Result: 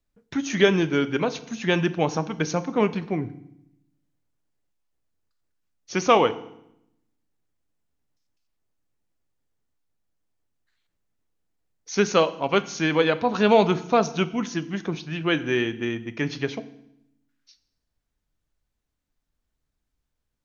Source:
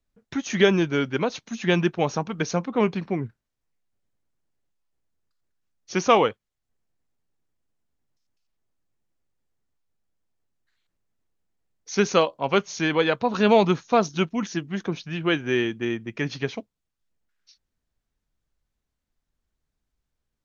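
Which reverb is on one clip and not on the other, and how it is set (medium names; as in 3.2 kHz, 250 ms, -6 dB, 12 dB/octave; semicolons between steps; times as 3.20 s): FDN reverb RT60 0.77 s, low-frequency decay 1.45×, high-frequency decay 0.95×, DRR 12 dB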